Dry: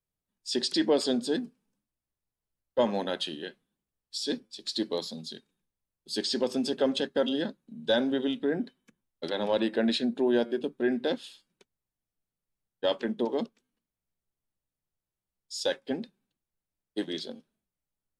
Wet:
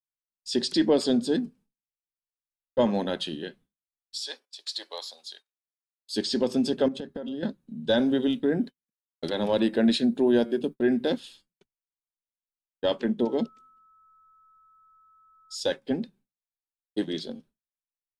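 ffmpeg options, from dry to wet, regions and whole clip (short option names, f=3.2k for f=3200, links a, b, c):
-filter_complex "[0:a]asettb=1/sr,asplit=3[a][b][c];[a]atrim=end=4.204[d];[b]atrim=start=4.2:end=6.14,asetpts=PTS-STARTPTS,afade=t=in:d=0.004:c=qsin,afade=t=out:st=1.936:d=0.004:c=qsin,agate=range=-11dB:threshold=-57dB:ratio=16:release=100:detection=peak,highpass=f=680:w=0.5412,highpass=f=680:w=1.3066[e];[c]atrim=start=6.136[f];[d][e]acrossfade=d=0.004:c1=hsin:c2=qsin[g];[g][f]acrossfade=d=0.004:c1=qsin:c2=hsin,asettb=1/sr,asplit=3[h][i][j];[h]atrim=end=6.884[k];[i]atrim=start=6.88:end=7.43,asetpts=PTS-STARTPTS,afade=t=in:d=0.004:c=qsin,afade=t=out:st=0.546:d=0.004:c=qsin,equalizer=f=4.5k:w=0.39:g=-6.5,acompressor=threshold=-34dB:ratio=10:attack=3.2:release=140:knee=1:detection=peak[l];[j]atrim=start=7.426[m];[k][l]acrossfade=d=0.004:c1=hsin:c2=qsin[n];[n][m]acrossfade=d=0.004:c1=qsin:c2=hsin,asettb=1/sr,asplit=3[o][p][q];[o]atrim=end=7.994[r];[p]atrim=start=7.99:end=11.2,asetpts=PTS-STARTPTS,afade=t=in:d=0.004:c=qsin,afade=t=out:st=3.206:d=0.004:c=qsin,agate=range=-33dB:threshold=-43dB:ratio=3:release=100:detection=peak,highshelf=f=8.8k:g=11.5[s];[q]atrim=start=11.196[t];[r][s]acrossfade=d=0.004:c1=hsin:c2=qsin[u];[u][t]acrossfade=d=0.004:c1=qsin:c2=hsin,asettb=1/sr,asplit=3[v][w][x];[v]atrim=end=13.204[y];[w]atrim=start=13.2:end=15.55,asetpts=PTS-STARTPTS,afade=t=in:d=0.004:c=qsin,afade=t=out:st=2.346:d=0.004:c=qsin,equalizer=f=1.2k:w=7.9:g=-14,aeval=exprs='val(0)+0.002*sin(2*PI*1300*n/s)':c=same[z];[x]atrim=start=15.546[aa];[y][z]acrossfade=d=0.004:c1=hsin:c2=qsin[ab];[ab][aa]acrossfade=d=0.004:c1=qsin:c2=hsin,agate=range=-33dB:threshold=-54dB:ratio=3:detection=peak,lowshelf=f=230:g=11.5"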